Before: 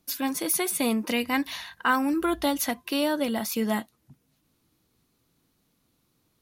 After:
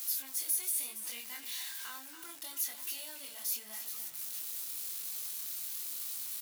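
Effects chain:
converter with a step at zero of −25.5 dBFS
downward compressor 2 to 1, threshold −25 dBFS, peak gain reduction 5.5 dB
first difference
single-tap delay 282 ms −10 dB
chorus effect 1 Hz, delay 19 ms, depth 6.7 ms
level −4.5 dB

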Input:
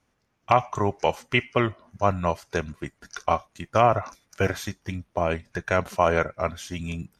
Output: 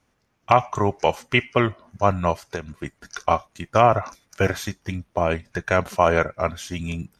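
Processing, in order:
0:02.45–0:02.85: downward compressor 6 to 1, threshold −29 dBFS, peak gain reduction 9 dB
level +3 dB

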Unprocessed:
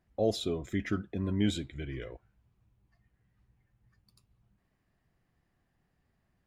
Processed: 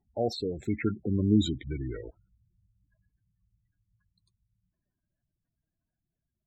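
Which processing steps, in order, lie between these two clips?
source passing by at 0:01.42, 31 m/s, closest 21 metres
tape wow and flutter 22 cents
gate on every frequency bin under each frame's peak −15 dB strong
level +6 dB

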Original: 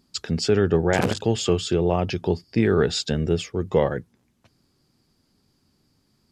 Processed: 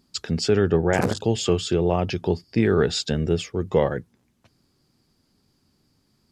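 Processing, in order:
0:00.71–0:01.42: parametric band 7,800 Hz → 1,100 Hz −13 dB 0.49 octaves

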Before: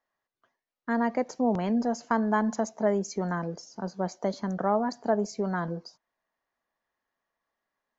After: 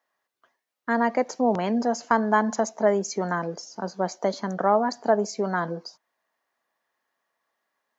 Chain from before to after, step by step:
high-pass filter 360 Hz 6 dB per octave
level +6.5 dB

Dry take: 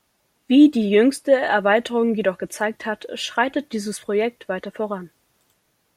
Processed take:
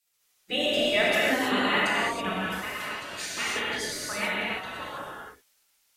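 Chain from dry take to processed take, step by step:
gate on every frequency bin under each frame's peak −15 dB weak
dynamic equaliser 260 Hz, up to +5 dB, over −48 dBFS, Q 1.5
reverb whose tail is shaped and stops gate 350 ms flat, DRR −7 dB
level −1.5 dB

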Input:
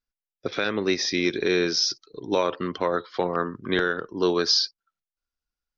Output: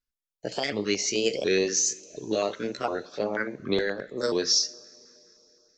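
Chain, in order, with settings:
pitch shifter swept by a sawtooth +5.5 semitones, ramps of 720 ms
coupled-rooms reverb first 0.47 s, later 3.7 s, from −16 dB, DRR 15 dB
notch on a step sequencer 9.5 Hz 730–2,000 Hz

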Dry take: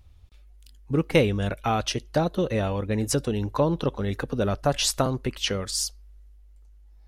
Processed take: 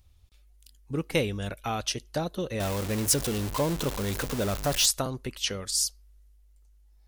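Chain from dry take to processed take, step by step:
0:02.60–0:04.86: converter with a step at zero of −24 dBFS
high-shelf EQ 3,900 Hz +11 dB
level −7 dB

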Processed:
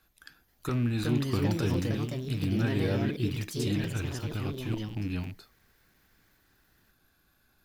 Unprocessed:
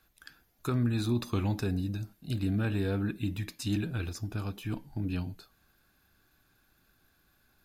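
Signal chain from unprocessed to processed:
loose part that buzzes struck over −36 dBFS, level −37 dBFS
delay with pitch and tempo change per echo 482 ms, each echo +3 semitones, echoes 2
regular buffer underruns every 0.35 s, samples 128, zero, from 0:00.34

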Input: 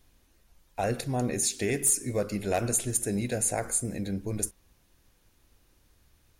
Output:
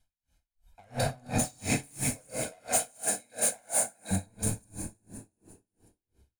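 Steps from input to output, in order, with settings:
delay that plays each chunk backwards 189 ms, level −7 dB
0:02.10–0:04.11: high-pass filter 430 Hz 12 dB per octave
noise reduction from a noise print of the clip's start 14 dB
low-pass filter 9,900 Hz 12 dB per octave
high-shelf EQ 5,800 Hz +6 dB
notch filter 5,800 Hz, Q 9.6
comb filter 1.3 ms, depth 97%
hard clipping −23 dBFS, distortion −7 dB
echo with shifted repeats 177 ms, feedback 62%, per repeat +40 Hz, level −13 dB
dense smooth reverb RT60 2.1 s, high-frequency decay 0.6×, DRR −1 dB
tremolo with a sine in dB 2.9 Hz, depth 35 dB

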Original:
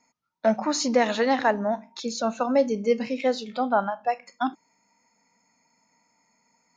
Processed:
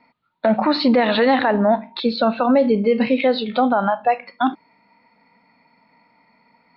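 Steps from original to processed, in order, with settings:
Butterworth low-pass 4,300 Hz 72 dB per octave
boost into a limiter +18.5 dB
level −7 dB

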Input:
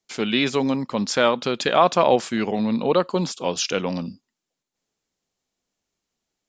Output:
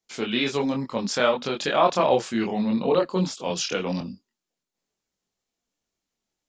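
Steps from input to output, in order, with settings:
multi-voice chorus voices 4, 1.3 Hz, delay 24 ms, depth 3.1 ms
0:03.50–0:04.01: multiband upward and downward compressor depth 40%

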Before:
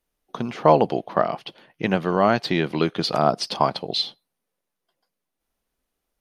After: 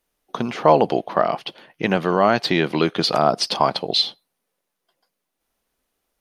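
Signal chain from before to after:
low-shelf EQ 190 Hz −6.5 dB
in parallel at +1 dB: brickwall limiter −13.5 dBFS, peak gain reduction 10.5 dB
on the sum: level −1 dB

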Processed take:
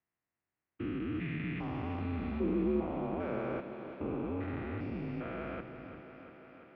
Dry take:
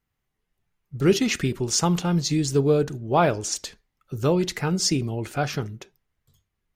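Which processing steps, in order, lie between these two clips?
spectrum averaged block by block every 400 ms
feedback echo with a high-pass in the loop 344 ms, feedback 76%, high-pass 200 Hz, level −10 dB
single-sideband voice off tune −85 Hz 200–2,700 Hz
level −6 dB

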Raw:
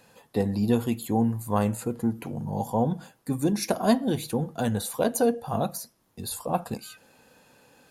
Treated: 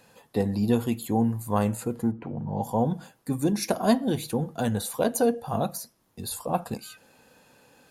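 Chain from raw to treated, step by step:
0:02.10–0:02.62: low-pass filter 1,300 Hz → 3,300 Hz 12 dB per octave

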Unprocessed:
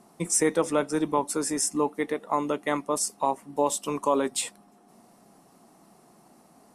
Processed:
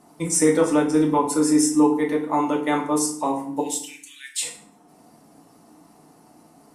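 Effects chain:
0:03.60–0:04.42: Butterworth high-pass 1,700 Hz 72 dB per octave
convolution reverb RT60 0.60 s, pre-delay 3 ms, DRR −1 dB

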